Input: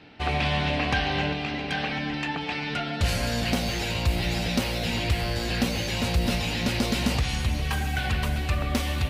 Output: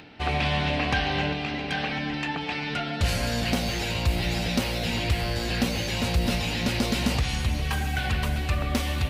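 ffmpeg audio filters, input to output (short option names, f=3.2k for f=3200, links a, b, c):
-af "acompressor=mode=upward:threshold=-44dB:ratio=2.5"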